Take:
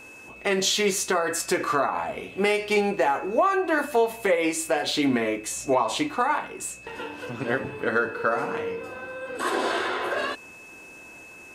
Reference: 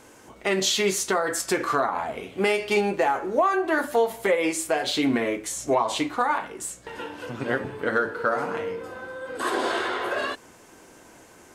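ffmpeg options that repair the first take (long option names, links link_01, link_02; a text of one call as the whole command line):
ffmpeg -i in.wav -af "bandreject=frequency=2600:width=30" out.wav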